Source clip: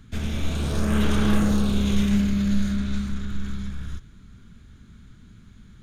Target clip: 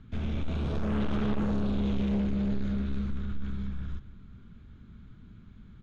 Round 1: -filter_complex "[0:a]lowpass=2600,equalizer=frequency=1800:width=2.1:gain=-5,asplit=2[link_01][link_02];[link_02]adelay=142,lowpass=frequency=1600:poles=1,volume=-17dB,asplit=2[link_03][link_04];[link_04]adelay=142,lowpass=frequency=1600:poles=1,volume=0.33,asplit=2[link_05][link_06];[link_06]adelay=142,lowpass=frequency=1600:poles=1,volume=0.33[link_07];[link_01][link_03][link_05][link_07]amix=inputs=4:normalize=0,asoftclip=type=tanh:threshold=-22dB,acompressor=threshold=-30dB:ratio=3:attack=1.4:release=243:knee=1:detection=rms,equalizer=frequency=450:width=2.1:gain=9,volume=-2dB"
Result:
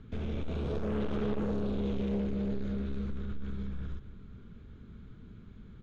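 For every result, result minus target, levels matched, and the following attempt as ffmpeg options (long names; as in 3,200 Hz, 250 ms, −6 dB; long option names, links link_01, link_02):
500 Hz band +5.5 dB; downward compressor: peak gain reduction +5.5 dB
-filter_complex "[0:a]lowpass=2600,equalizer=frequency=1800:width=2.1:gain=-5,asplit=2[link_01][link_02];[link_02]adelay=142,lowpass=frequency=1600:poles=1,volume=-17dB,asplit=2[link_03][link_04];[link_04]adelay=142,lowpass=frequency=1600:poles=1,volume=0.33,asplit=2[link_05][link_06];[link_06]adelay=142,lowpass=frequency=1600:poles=1,volume=0.33[link_07];[link_01][link_03][link_05][link_07]amix=inputs=4:normalize=0,asoftclip=type=tanh:threshold=-22dB,acompressor=threshold=-30dB:ratio=3:attack=1.4:release=243:knee=1:detection=rms,volume=-2dB"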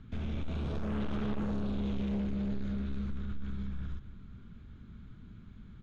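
downward compressor: peak gain reduction +5.5 dB
-filter_complex "[0:a]lowpass=2600,equalizer=frequency=1800:width=2.1:gain=-5,asplit=2[link_01][link_02];[link_02]adelay=142,lowpass=frequency=1600:poles=1,volume=-17dB,asplit=2[link_03][link_04];[link_04]adelay=142,lowpass=frequency=1600:poles=1,volume=0.33,asplit=2[link_05][link_06];[link_06]adelay=142,lowpass=frequency=1600:poles=1,volume=0.33[link_07];[link_01][link_03][link_05][link_07]amix=inputs=4:normalize=0,asoftclip=type=tanh:threshold=-22dB,volume=-2dB"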